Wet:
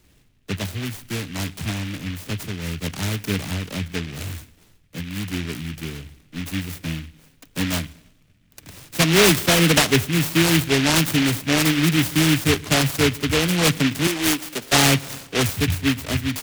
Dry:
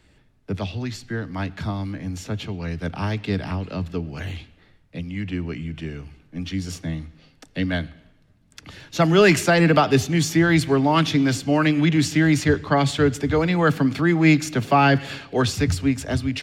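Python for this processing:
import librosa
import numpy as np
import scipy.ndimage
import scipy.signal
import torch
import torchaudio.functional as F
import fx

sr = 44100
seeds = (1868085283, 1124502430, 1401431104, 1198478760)

y = fx.bandpass_edges(x, sr, low_hz=400.0, high_hz=6200.0, at=(14.07, 14.73))
y = fx.noise_mod_delay(y, sr, seeds[0], noise_hz=2300.0, depth_ms=0.27)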